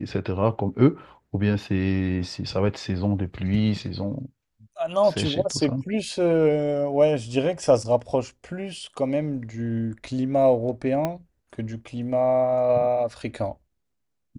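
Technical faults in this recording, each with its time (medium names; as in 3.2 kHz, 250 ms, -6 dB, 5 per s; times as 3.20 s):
11.05 s: pop -12 dBFS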